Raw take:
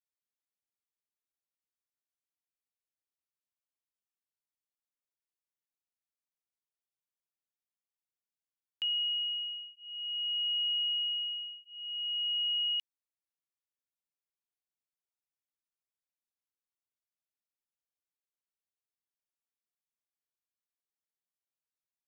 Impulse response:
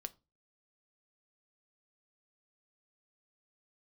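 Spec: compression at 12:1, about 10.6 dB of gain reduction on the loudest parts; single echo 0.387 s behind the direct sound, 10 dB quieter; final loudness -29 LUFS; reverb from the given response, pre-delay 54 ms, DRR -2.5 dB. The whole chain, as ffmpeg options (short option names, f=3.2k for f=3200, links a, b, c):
-filter_complex "[0:a]acompressor=threshold=-41dB:ratio=12,aecho=1:1:387:0.316,asplit=2[a][b];[1:a]atrim=start_sample=2205,adelay=54[c];[b][c]afir=irnorm=-1:irlink=0,volume=6dB[d];[a][d]amix=inputs=2:normalize=0,volume=8dB"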